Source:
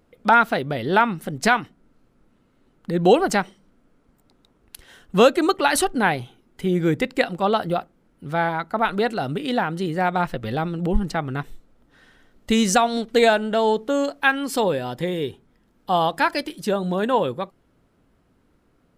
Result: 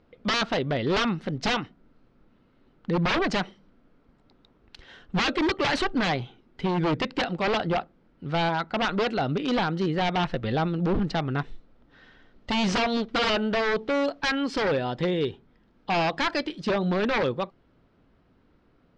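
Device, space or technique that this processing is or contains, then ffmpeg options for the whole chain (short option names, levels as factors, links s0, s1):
synthesiser wavefolder: -af "aeval=exprs='0.119*(abs(mod(val(0)/0.119+3,4)-2)-1)':c=same,lowpass=f=4900:w=0.5412,lowpass=f=4900:w=1.3066"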